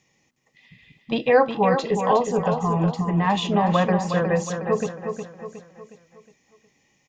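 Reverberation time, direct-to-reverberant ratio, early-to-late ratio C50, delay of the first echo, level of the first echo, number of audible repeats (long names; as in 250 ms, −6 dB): no reverb audible, no reverb audible, no reverb audible, 363 ms, −7.0 dB, 4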